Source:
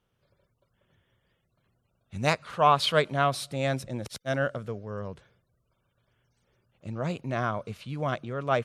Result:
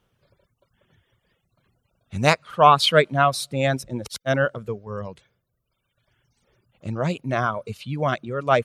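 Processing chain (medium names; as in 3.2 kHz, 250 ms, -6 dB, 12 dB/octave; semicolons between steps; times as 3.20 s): reverb removal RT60 1.5 s; trim +7.5 dB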